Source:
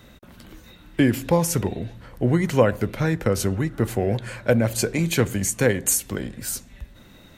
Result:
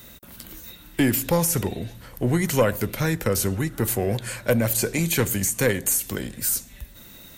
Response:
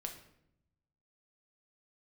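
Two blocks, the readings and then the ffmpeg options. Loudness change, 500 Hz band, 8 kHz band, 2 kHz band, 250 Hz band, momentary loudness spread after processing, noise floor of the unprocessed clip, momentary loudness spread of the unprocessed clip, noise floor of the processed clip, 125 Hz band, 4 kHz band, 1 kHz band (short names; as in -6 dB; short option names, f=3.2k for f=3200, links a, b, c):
-0.5 dB, -2.0 dB, +1.5 dB, +0.5 dB, -2.0 dB, 18 LU, -49 dBFS, 10 LU, -46 dBFS, -2.0 dB, +1.0 dB, -1.5 dB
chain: -filter_complex "[0:a]acrossover=split=2700[a][b];[b]acompressor=threshold=-32dB:ratio=4:attack=1:release=60[c];[a][c]amix=inputs=2:normalize=0,aemphasis=mode=production:type=75fm,aeval=exprs='(tanh(2.82*val(0)+0.15)-tanh(0.15))/2.82':c=same"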